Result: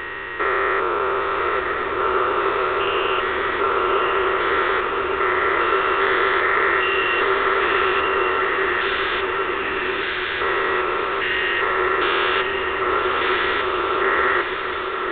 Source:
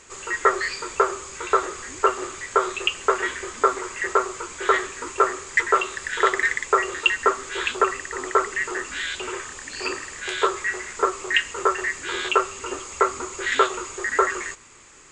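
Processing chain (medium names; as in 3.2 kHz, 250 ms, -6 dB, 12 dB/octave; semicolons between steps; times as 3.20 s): spectrogram pixelated in time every 400 ms; resampled via 8 kHz; echo that smears into a reverb 1083 ms, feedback 49%, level -4 dB; trim +8.5 dB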